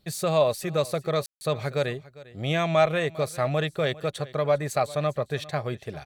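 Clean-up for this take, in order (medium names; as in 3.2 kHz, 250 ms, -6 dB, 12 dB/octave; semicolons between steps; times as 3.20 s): room tone fill 1.26–1.41 s; inverse comb 401 ms -19.5 dB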